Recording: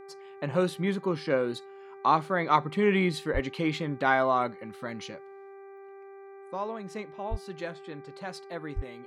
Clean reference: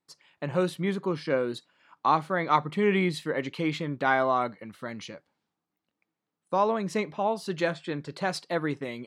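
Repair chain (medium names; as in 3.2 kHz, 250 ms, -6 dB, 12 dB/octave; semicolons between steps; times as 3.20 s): de-hum 392.6 Hz, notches 6; 3.33–3.45 s: high-pass 140 Hz 24 dB/octave; 7.30–7.42 s: high-pass 140 Hz 24 dB/octave; 8.75–8.87 s: high-pass 140 Hz 24 dB/octave; trim 0 dB, from 6.51 s +9.5 dB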